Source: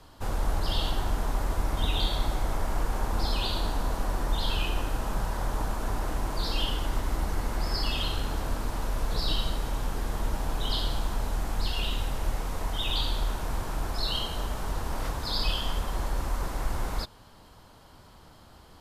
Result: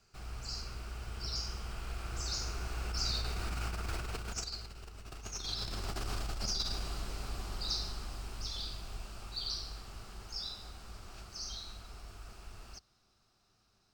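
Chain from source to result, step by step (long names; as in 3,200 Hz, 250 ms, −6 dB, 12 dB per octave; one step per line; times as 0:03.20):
source passing by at 0:06.69, 29 m/s, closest 13 metres
EQ curve with evenly spaced ripples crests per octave 1.1, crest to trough 6 dB
compressor whose output falls as the input rises −40 dBFS, ratio −1
flat-topped bell 3,400 Hz +9 dB
wrong playback speed 33 rpm record played at 45 rpm
level +1 dB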